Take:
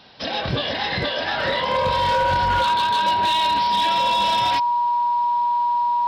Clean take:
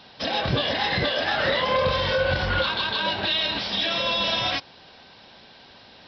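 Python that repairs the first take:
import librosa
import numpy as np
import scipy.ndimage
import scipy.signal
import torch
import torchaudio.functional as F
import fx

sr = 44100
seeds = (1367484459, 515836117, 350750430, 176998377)

y = fx.fix_declip(x, sr, threshold_db=-14.0)
y = fx.notch(y, sr, hz=960.0, q=30.0)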